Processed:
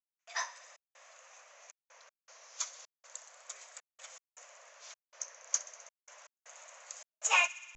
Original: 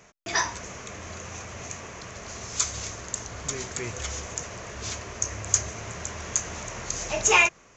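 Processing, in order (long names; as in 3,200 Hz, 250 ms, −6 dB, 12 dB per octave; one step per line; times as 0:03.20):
elliptic high-pass filter 530 Hz, stop band 40 dB
delay with a high-pass on its return 63 ms, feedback 84%, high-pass 1,700 Hz, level −14 dB
pitch vibrato 0.32 Hz 48 cents
gate pattern ".xxx.xxxx.x" 79 BPM −60 dB
expander for the loud parts 1.5 to 1, over −35 dBFS
level −7 dB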